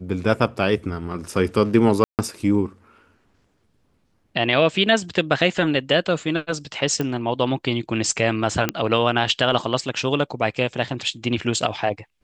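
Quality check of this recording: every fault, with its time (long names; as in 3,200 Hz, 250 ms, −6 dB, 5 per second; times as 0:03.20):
0:02.04–0:02.19: drop-out 148 ms
0:07.01: click −12 dBFS
0:08.69: click −5 dBFS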